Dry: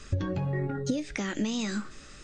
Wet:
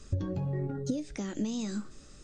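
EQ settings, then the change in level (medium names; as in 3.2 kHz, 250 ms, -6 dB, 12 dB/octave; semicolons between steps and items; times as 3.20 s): peaking EQ 2 kHz -11 dB 2.1 oct; -2.0 dB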